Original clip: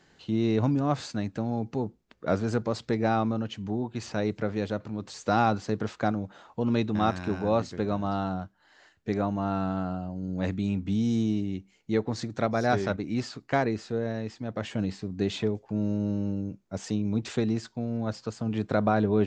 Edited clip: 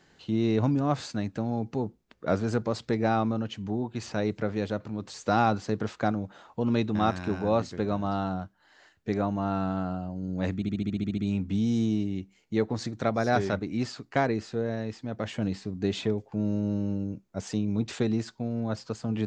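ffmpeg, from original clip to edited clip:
-filter_complex "[0:a]asplit=10[a][b][c][d][e][f][g][h][i][j];[a]atrim=end=10.622[k];[b]atrim=start=10.548:end=10.622[l];[c]atrim=start=10.548:end=10.622[m];[d]atrim=start=10.548:end=10.622[n];[e]atrim=start=10.548:end=10.622[o];[f]atrim=start=10.548:end=10.622[p];[g]atrim=start=10.548:end=10.622[q];[h]atrim=start=10.548:end=10.622[r];[i]atrim=start=10.548:end=10.622[s];[j]atrim=start=10.548[t];[k][l]acrossfade=d=0.004:c1=hsin:c2=hsin[u];[u][m]acrossfade=d=0.004:c1=hsin:c2=hsin[v];[v][n]acrossfade=d=0.004:c1=hsin:c2=hsin[w];[w][o]acrossfade=d=0.004:c1=hsin:c2=hsin[x];[x][p]acrossfade=d=0.004:c1=hsin:c2=hsin[y];[y][q]acrossfade=d=0.004:c1=hsin:c2=hsin[z];[z][r]acrossfade=d=0.004:c1=hsin:c2=hsin[aa];[aa][s]acrossfade=d=0.004:c1=hsin:c2=hsin[ab];[ab][t]acrossfade=d=0.004:c1=hsin:c2=hsin"

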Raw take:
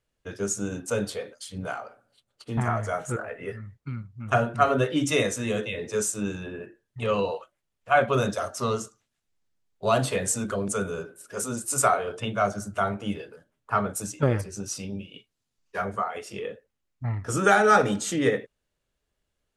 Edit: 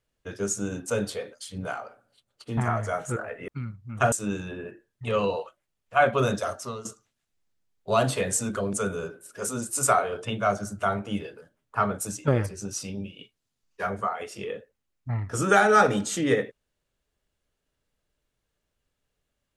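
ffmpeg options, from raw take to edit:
-filter_complex "[0:a]asplit=4[a][b][c][d];[a]atrim=end=3.482[e];[b]atrim=start=3.788:end=4.432[f];[c]atrim=start=6.068:end=8.8,asetpts=PTS-STARTPTS,afade=t=out:st=2.432:d=0.3:c=qua:silence=0.223872[g];[d]atrim=start=8.8,asetpts=PTS-STARTPTS,afade=t=in:d=0.004:c=hsin:silence=0.223872[h];[e][f]acrossfade=d=0.004:c1=hsin:c2=hsin[i];[g][h]concat=n=2:v=0:a=1[j];[i][j]acrossfade=d=0.004:c1=hsin:c2=hsin"

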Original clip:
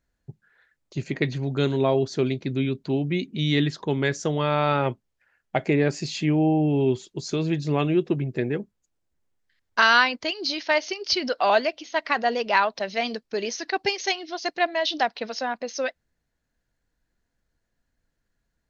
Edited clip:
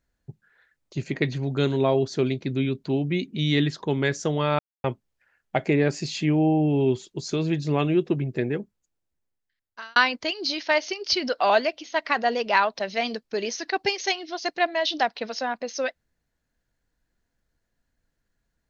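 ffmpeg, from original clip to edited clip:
-filter_complex "[0:a]asplit=4[a][b][c][d];[a]atrim=end=4.59,asetpts=PTS-STARTPTS,afade=t=out:st=4.586:d=0.004:c=hsin[e];[b]atrim=start=4.59:end=4.84,asetpts=PTS-STARTPTS,volume=0[f];[c]atrim=start=4.84:end=9.96,asetpts=PTS-STARTPTS,afade=t=in:d=0.004:c=hsin,afade=t=out:st=3.62:d=1.5[g];[d]atrim=start=9.96,asetpts=PTS-STARTPTS,afade=t=in:d=0.004:c=hsin[h];[e][f][g][h]concat=n=4:v=0:a=1"

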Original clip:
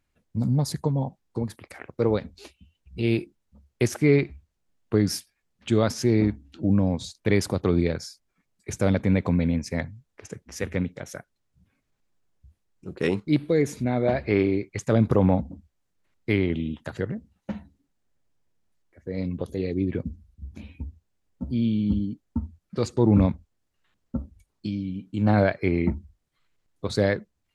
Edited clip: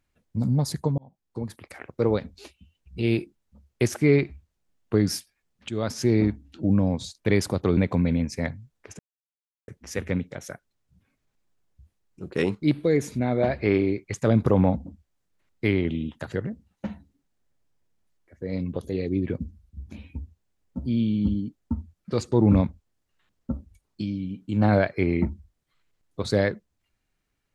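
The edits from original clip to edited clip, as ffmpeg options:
-filter_complex "[0:a]asplit=5[a][b][c][d][e];[a]atrim=end=0.98,asetpts=PTS-STARTPTS,afade=t=out:st=0.976:d=0.004:c=hsin[f];[b]atrim=start=0.98:end=5.69,asetpts=PTS-STARTPTS,afade=t=in:d=0.65,afade=t=out:st=4.706:d=0.004:c=hsin:silence=0.223872[g];[c]atrim=start=5.69:end=7.772,asetpts=PTS-STARTPTS,afade=t=in:d=0.35:silence=0.223872[h];[d]atrim=start=9.108:end=10.33,asetpts=PTS-STARTPTS,afade=t=out:st=1.218:d=0.004:c=hsin,apad=pad_dur=0.69[i];[e]atrim=start=10.33,asetpts=PTS-STARTPTS,afade=t=in:d=0.004:c=hsin[j];[f][g][h]concat=n=3:v=0:a=1[k];[i][j]concat=n=2:v=0:a=1[l];[k][l]acrossfade=d=0.004:c1=hsin:c2=hsin"

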